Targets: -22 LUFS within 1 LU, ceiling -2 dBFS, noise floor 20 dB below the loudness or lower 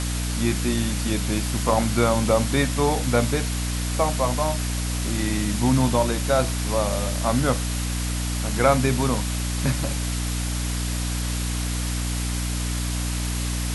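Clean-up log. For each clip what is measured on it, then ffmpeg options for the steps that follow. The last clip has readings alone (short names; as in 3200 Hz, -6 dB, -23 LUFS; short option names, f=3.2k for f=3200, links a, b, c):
hum 60 Hz; harmonics up to 300 Hz; hum level -24 dBFS; noise floor -26 dBFS; noise floor target -44 dBFS; loudness -23.5 LUFS; peak -5.0 dBFS; loudness target -22.0 LUFS
-> -af "bandreject=f=60:t=h:w=4,bandreject=f=120:t=h:w=4,bandreject=f=180:t=h:w=4,bandreject=f=240:t=h:w=4,bandreject=f=300:t=h:w=4"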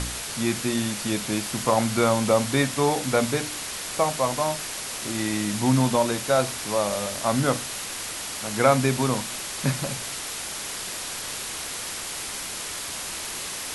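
hum none; noise floor -33 dBFS; noise floor target -46 dBFS
-> -af "afftdn=nr=13:nf=-33"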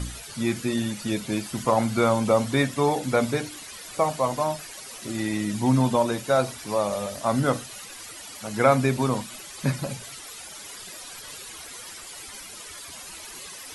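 noise floor -41 dBFS; noise floor target -45 dBFS
-> -af "afftdn=nr=6:nf=-41"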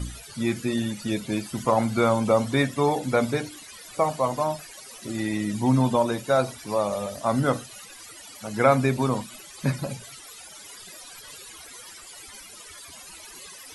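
noise floor -45 dBFS; loudness -25.0 LUFS; peak -5.5 dBFS; loudness target -22.0 LUFS
-> -af "volume=3dB"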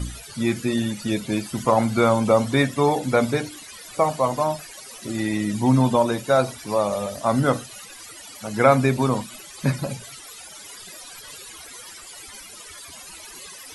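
loudness -22.0 LUFS; peak -2.5 dBFS; noise floor -42 dBFS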